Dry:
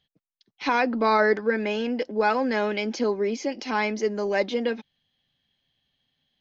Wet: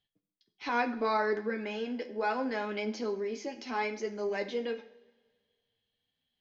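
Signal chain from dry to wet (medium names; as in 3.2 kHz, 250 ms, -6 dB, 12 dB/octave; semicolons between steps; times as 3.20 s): flange 0.69 Hz, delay 9.3 ms, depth 3.4 ms, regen +43%; two-slope reverb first 0.58 s, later 1.9 s, from -18 dB, DRR 8 dB; trim -5.5 dB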